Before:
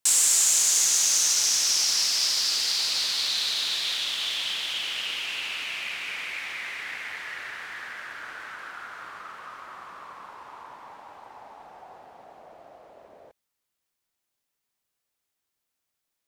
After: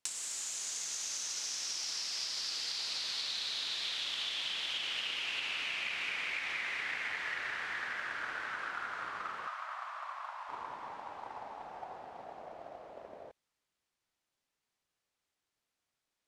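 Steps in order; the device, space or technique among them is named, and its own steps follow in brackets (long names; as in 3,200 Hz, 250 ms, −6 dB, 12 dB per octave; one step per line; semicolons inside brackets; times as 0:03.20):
0:09.47–0:10.49: elliptic high-pass filter 620 Hz, stop band 40 dB
drum-bus smash (transient designer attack +7 dB, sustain +1 dB; downward compressor 10 to 1, threshold −32 dBFS, peak gain reduction 19.5 dB; soft clipping −17.5 dBFS, distortion −31 dB)
high-frequency loss of the air 54 metres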